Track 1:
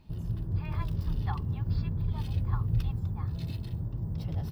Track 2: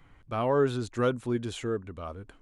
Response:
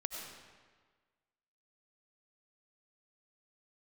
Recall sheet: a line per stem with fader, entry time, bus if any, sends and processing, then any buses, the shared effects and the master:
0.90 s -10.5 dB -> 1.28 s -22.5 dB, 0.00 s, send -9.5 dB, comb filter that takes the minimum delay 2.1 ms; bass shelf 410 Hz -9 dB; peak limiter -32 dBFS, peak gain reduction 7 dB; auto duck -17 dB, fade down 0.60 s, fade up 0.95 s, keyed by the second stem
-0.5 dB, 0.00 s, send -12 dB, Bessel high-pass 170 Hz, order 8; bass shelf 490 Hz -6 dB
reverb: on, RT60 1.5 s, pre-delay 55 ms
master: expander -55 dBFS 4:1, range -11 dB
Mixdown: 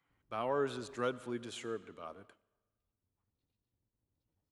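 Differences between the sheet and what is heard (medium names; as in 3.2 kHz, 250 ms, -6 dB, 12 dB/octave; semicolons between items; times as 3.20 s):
stem 1 -10.5 dB -> -22.0 dB; stem 2 -0.5 dB -> -7.0 dB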